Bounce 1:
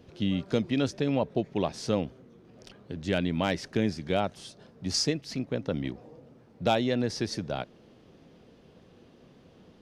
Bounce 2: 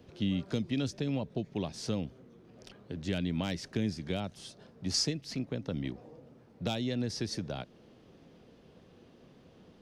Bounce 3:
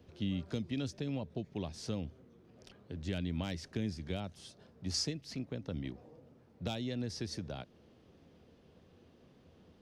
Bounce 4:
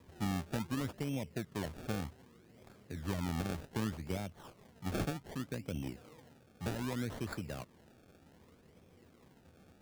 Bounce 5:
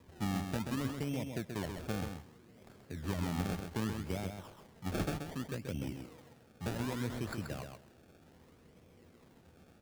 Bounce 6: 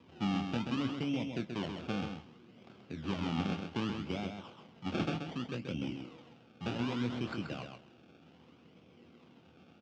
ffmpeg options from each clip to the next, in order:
-filter_complex "[0:a]acrossover=split=260|3000[a][b][c];[b]acompressor=threshold=-36dB:ratio=4[d];[a][d][c]amix=inputs=3:normalize=0,volume=-2dB"
-af "equalizer=f=80:w=4.2:g=10.5,volume=-5dB"
-af "acrusher=samples=30:mix=1:aa=0.000001:lfo=1:lforange=30:lforate=0.65"
-af "aecho=1:1:131|262|393:0.501|0.0802|0.0128"
-filter_complex "[0:a]highpass=160,equalizer=f=430:t=q:w=4:g=-5,equalizer=f=610:t=q:w=4:g=-5,equalizer=f=950:t=q:w=4:g=-3,equalizer=f=1.8k:t=q:w=4:g=-9,equalizer=f=2.9k:t=q:w=4:g=5,equalizer=f=4.2k:t=q:w=4:g=-5,lowpass=f=4.8k:w=0.5412,lowpass=f=4.8k:w=1.3066,asplit=2[a][b];[b]adelay=25,volume=-10dB[c];[a][c]amix=inputs=2:normalize=0,volume=4dB"

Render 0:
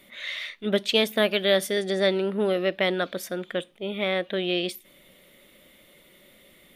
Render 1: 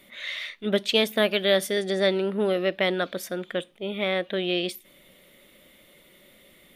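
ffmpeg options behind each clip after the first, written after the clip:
-af anull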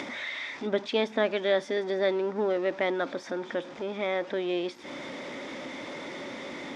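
-af "aeval=exprs='val(0)+0.5*0.0211*sgn(val(0))':c=same,highpass=150,equalizer=f=190:t=q:w=4:g=-7,equalizer=f=270:t=q:w=4:g=9,equalizer=f=890:t=q:w=4:g=7,equalizer=f=2.9k:t=q:w=4:g=-10,equalizer=f=4.2k:t=q:w=4:g=-8,lowpass=f=5.1k:w=0.5412,lowpass=f=5.1k:w=1.3066,acompressor=mode=upward:threshold=-26dB:ratio=2.5,volume=-4.5dB"

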